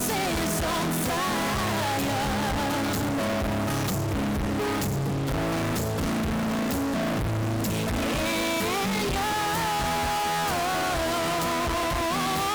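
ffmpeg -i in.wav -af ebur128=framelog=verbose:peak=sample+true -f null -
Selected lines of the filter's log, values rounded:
Integrated loudness:
  I:         -26.2 LUFS
  Threshold: -36.2 LUFS
Loudness range:
  LRA:         1.4 LU
  Threshold: -46.3 LUFS
  LRA low:   -27.0 LUFS
  LRA high:  -25.6 LUFS
Sample peak:
  Peak:      -22.1 dBFS
True peak:
  Peak:      -21.4 dBFS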